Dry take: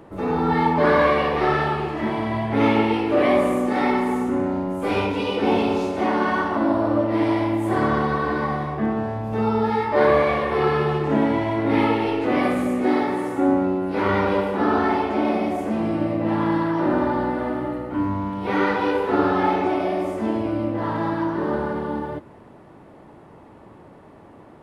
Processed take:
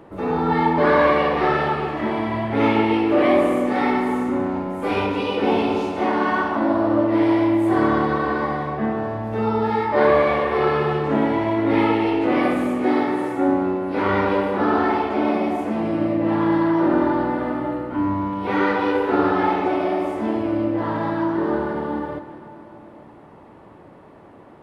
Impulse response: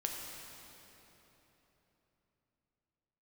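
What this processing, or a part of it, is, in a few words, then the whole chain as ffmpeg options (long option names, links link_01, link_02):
filtered reverb send: -filter_complex "[0:a]asplit=2[link_01][link_02];[link_02]highpass=frequency=230:poles=1,lowpass=5000[link_03];[1:a]atrim=start_sample=2205[link_04];[link_03][link_04]afir=irnorm=-1:irlink=0,volume=-5.5dB[link_05];[link_01][link_05]amix=inputs=2:normalize=0,volume=-2.5dB"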